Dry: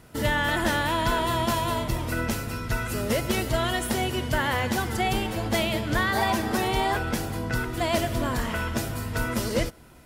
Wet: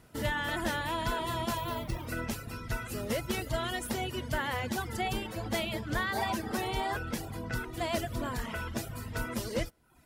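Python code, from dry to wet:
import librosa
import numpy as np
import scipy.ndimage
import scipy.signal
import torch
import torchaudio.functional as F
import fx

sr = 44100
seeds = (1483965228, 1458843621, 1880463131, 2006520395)

y = fx.dereverb_blind(x, sr, rt60_s=0.63)
y = fx.resample_bad(y, sr, factor=3, down='filtered', up='hold', at=(1.57, 2.06))
y = F.gain(torch.from_numpy(y), -6.5).numpy()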